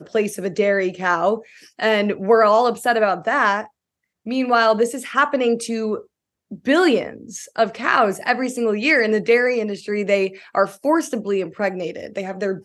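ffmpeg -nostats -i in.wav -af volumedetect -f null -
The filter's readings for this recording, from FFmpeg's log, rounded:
mean_volume: -19.9 dB
max_volume: -2.2 dB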